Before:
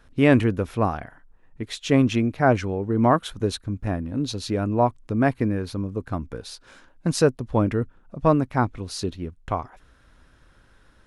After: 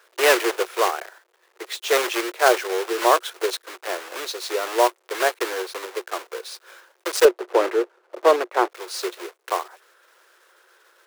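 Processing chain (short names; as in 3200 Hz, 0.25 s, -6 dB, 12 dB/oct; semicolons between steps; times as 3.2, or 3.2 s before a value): block floating point 3-bit; rippled Chebyshev high-pass 350 Hz, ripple 3 dB; 7.25–8.7 tilt -3.5 dB/oct; gain +4.5 dB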